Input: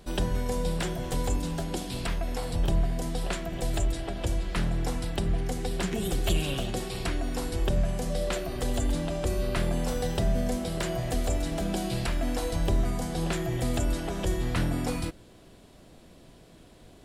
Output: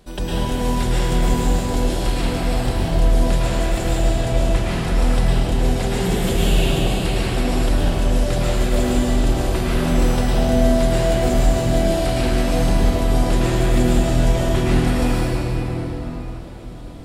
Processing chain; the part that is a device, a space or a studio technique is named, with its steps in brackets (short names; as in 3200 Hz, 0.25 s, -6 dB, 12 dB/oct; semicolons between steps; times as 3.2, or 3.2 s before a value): 6.59–7.05 notch 5600 Hz, Q 5.3; cathedral (reverb RT60 4.8 s, pre-delay 0.1 s, DRR -10 dB)